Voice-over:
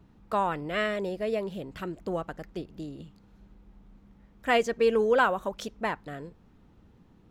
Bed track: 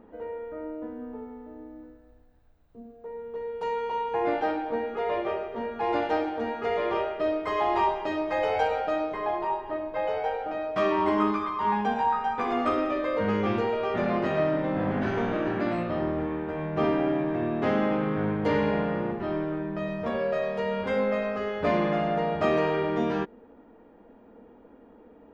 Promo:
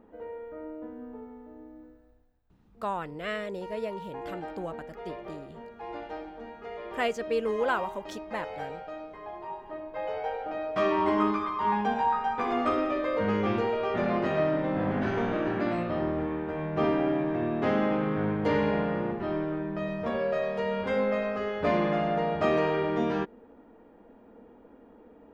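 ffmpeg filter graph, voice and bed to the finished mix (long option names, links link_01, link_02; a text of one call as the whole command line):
ffmpeg -i stem1.wav -i stem2.wav -filter_complex "[0:a]adelay=2500,volume=-5dB[link_01];[1:a]volume=7.5dB,afade=type=out:start_time=2.02:duration=0.4:silence=0.375837,afade=type=in:start_time=9.32:duration=1.49:silence=0.266073[link_02];[link_01][link_02]amix=inputs=2:normalize=0" out.wav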